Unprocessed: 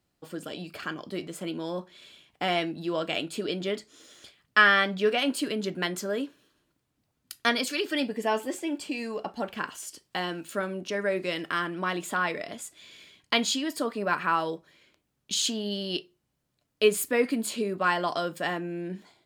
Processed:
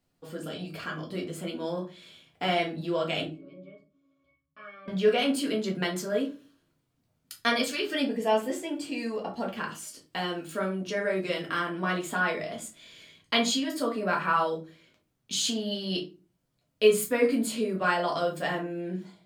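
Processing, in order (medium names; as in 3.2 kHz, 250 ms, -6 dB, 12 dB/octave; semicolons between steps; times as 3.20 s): 3.26–4.88 s: pitch-class resonator C#, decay 0.25 s; simulated room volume 130 m³, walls furnished, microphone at 1.7 m; trim -4 dB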